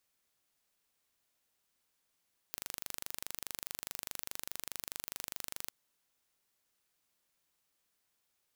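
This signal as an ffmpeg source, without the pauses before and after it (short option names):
-f lavfi -i "aevalsrc='0.251*eq(mod(n,1778),0)':d=3.17:s=44100"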